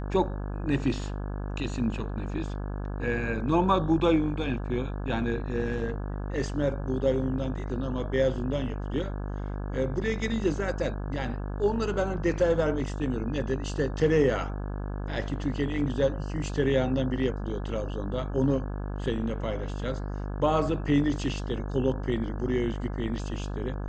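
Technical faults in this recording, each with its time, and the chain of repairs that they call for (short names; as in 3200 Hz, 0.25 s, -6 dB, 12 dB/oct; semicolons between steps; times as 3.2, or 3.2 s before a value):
buzz 50 Hz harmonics 34 -33 dBFS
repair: de-hum 50 Hz, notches 34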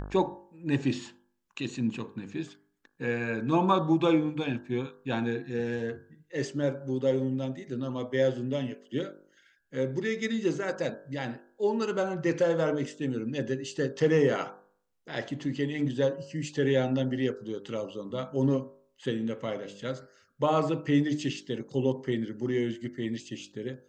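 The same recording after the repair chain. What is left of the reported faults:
none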